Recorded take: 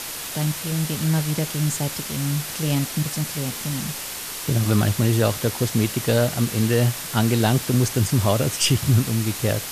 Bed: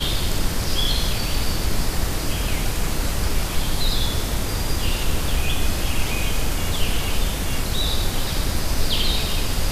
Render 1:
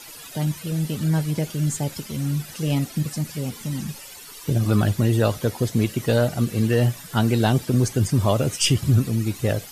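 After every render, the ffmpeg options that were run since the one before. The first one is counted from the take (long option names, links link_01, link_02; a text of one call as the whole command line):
ffmpeg -i in.wav -af "afftdn=noise_reduction=14:noise_floor=-32" out.wav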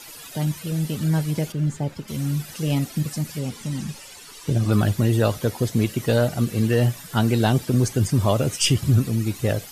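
ffmpeg -i in.wav -filter_complex "[0:a]asettb=1/sr,asplit=3[link_01][link_02][link_03];[link_01]atrim=end=1.524[link_04];[link_02]atrim=start=1.52:end=2.08,asetpts=PTS-STARTPTS,afade=type=in:duration=0.004:curve=qsin,afade=type=out:start_time=0.556:duration=0.004:curve=qsin,lowpass=frequency=1600:poles=1[link_05];[link_03]atrim=start=2.076[link_06];[link_04][link_05]acrossfade=duration=0.004:curve1=hsin:curve2=qsin[link_07];[link_07][link_06]acrossfade=duration=0.004:curve1=qsin:curve2=hsin,asettb=1/sr,asplit=3[link_08][link_09][link_10];[link_08]atrim=end=3.394[link_11];[link_09]atrim=start=3.39:end=4.72,asetpts=PTS-STARTPTS,afade=type=in:duration=0.004:curve=qsin,afade=type=out:start_time=1.326:duration=0.004:curve=qsin,lowpass=10000[link_12];[link_10]atrim=start=4.716[link_13];[link_11][link_12]acrossfade=duration=0.004:curve1=hsin:curve2=qsin[link_14];[link_14][link_13]acrossfade=duration=0.004:curve1=qsin:curve2=hsin" out.wav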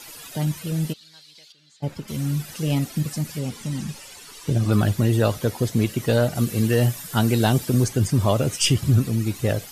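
ffmpeg -i in.wav -filter_complex "[0:a]asplit=3[link_01][link_02][link_03];[link_01]afade=type=out:start_time=0.92:duration=0.02[link_04];[link_02]bandpass=frequency=4100:width_type=q:width=4.3,afade=type=in:start_time=0.92:duration=0.02,afade=type=out:start_time=1.82:duration=0.02[link_05];[link_03]afade=type=in:start_time=1.82:duration=0.02[link_06];[link_04][link_05][link_06]amix=inputs=3:normalize=0,asettb=1/sr,asplit=3[link_07][link_08][link_09];[link_07]atrim=end=6.354[link_10];[link_08]atrim=start=6.35:end=7.84,asetpts=PTS-STARTPTS,afade=type=in:duration=0.004:curve=qsin,afade=type=out:start_time=1.486:duration=0.004:curve=qsin,highshelf=frequency=6600:gain=7[link_11];[link_09]atrim=start=7.836[link_12];[link_10][link_11]acrossfade=duration=0.004:curve1=hsin:curve2=qsin[link_13];[link_13][link_12]acrossfade=duration=0.004:curve1=qsin:curve2=hsin" out.wav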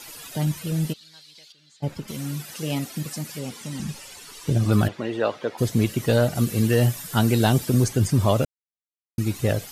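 ffmpeg -i in.wav -filter_complex "[0:a]asettb=1/sr,asplit=3[link_01][link_02][link_03];[link_01]atrim=end=2.114[link_04];[link_02]atrim=start=2.11:end=3.8,asetpts=PTS-STARTPTS,afade=type=in:duration=0.004:curve=qsin,afade=type=out:start_time=1.686:duration=0.004:curve=qsin,highpass=frequency=280:poles=1[link_05];[link_03]atrim=start=3.796[link_06];[link_04][link_05]acrossfade=duration=0.004:curve1=hsin:curve2=qsin[link_07];[link_07][link_06]acrossfade=duration=0.004:curve1=qsin:curve2=hsin,asplit=3[link_08][link_09][link_10];[link_08]afade=type=out:start_time=4.87:duration=0.02[link_11];[link_09]highpass=370,lowpass=3000,afade=type=in:start_time=4.87:duration=0.02,afade=type=out:start_time=5.57:duration=0.02[link_12];[link_10]afade=type=in:start_time=5.57:duration=0.02[link_13];[link_11][link_12][link_13]amix=inputs=3:normalize=0,asplit=3[link_14][link_15][link_16];[link_14]atrim=end=8.45,asetpts=PTS-STARTPTS,afade=type=out:start_time=8.446:duration=0.004:curve=hsin[link_17];[link_15]atrim=start=8.45:end=9.18,asetpts=PTS-STARTPTS,volume=0[link_18];[link_16]atrim=start=9.18,asetpts=PTS-STARTPTS,afade=type=in:duration=0.004:curve=hsin[link_19];[link_17][link_18][link_19]concat=n=3:v=0:a=1" out.wav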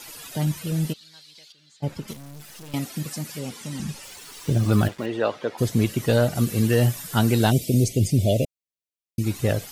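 ffmpeg -i in.wav -filter_complex "[0:a]asettb=1/sr,asplit=3[link_01][link_02][link_03];[link_01]atrim=end=2.134[link_04];[link_02]atrim=start=2.13:end=2.74,asetpts=PTS-STARTPTS,afade=type=in:duration=0.004:curve=qsin,afade=type=out:start_time=0.606:duration=0.004:curve=qsin,aeval=exprs='(tanh(100*val(0)+0.75)-tanh(0.75))/100':channel_layout=same[link_05];[link_03]atrim=start=2.736[link_06];[link_04][link_05]acrossfade=duration=0.004:curve1=hsin:curve2=qsin[link_07];[link_07][link_06]acrossfade=duration=0.004:curve1=qsin:curve2=hsin,asettb=1/sr,asplit=3[link_08][link_09][link_10];[link_08]atrim=end=4.034[link_11];[link_09]atrim=start=4.03:end=5.06,asetpts=PTS-STARTPTS,afade=type=in:duration=0.004:curve=qsin,afade=type=out:start_time=1.026:duration=0.004:curve=qsin,acrusher=bits=6:mix=0:aa=0.5[link_12];[link_10]atrim=start=5.056[link_13];[link_11][link_12]acrossfade=duration=0.004:curve1=hsin:curve2=qsin[link_14];[link_14][link_13]acrossfade=duration=0.004:curve1=qsin:curve2=hsin,asplit=3[link_15][link_16][link_17];[link_15]afade=type=out:start_time=7.5:duration=0.02[link_18];[link_16]asuperstop=centerf=1200:order=12:qfactor=0.86,afade=type=in:start_time=7.5:duration=0.02,afade=type=out:start_time=9.22:duration=0.02[link_19];[link_17]afade=type=in:start_time=9.22:duration=0.02[link_20];[link_18][link_19][link_20]amix=inputs=3:normalize=0" out.wav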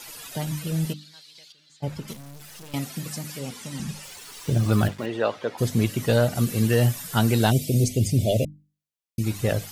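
ffmpeg -i in.wav -af "equalizer=frequency=320:width_type=o:width=0.77:gain=-2.5,bandreject=frequency=50:width_type=h:width=6,bandreject=frequency=100:width_type=h:width=6,bandreject=frequency=150:width_type=h:width=6,bandreject=frequency=200:width_type=h:width=6,bandreject=frequency=250:width_type=h:width=6,bandreject=frequency=300:width_type=h:width=6" out.wav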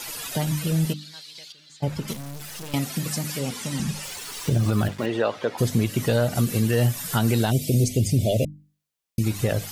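ffmpeg -i in.wav -filter_complex "[0:a]asplit=2[link_01][link_02];[link_02]acompressor=threshold=-31dB:ratio=6,volume=1dB[link_03];[link_01][link_03]amix=inputs=2:normalize=0,alimiter=limit=-12dB:level=0:latency=1:release=116" out.wav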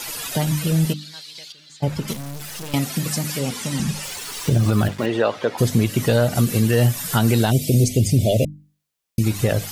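ffmpeg -i in.wav -af "volume=4dB" out.wav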